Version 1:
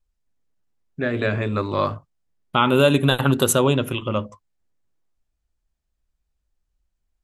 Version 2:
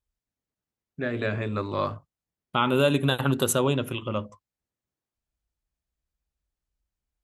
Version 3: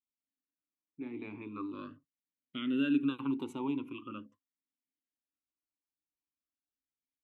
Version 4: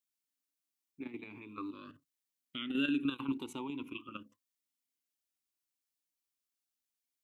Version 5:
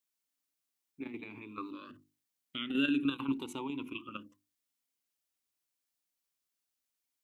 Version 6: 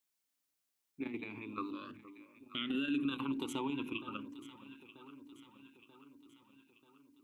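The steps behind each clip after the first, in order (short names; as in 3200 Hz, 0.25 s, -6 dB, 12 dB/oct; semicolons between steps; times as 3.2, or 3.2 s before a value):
HPF 40 Hz; gain -5.5 dB
vowel sweep i-u 0.42 Hz
high shelf 2100 Hz +11.5 dB; level quantiser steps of 10 dB
notches 50/100/150/200/250/300/350 Hz; gain +2.5 dB
limiter -28.5 dBFS, peak gain reduction 10.5 dB; echo with dull and thin repeats by turns 0.468 s, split 960 Hz, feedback 73%, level -13 dB; gain +1.5 dB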